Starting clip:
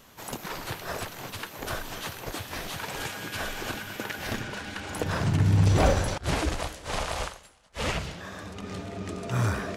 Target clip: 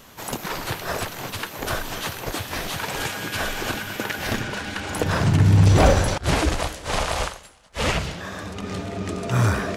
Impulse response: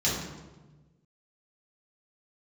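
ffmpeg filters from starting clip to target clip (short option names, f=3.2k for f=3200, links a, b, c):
-af "acontrast=71"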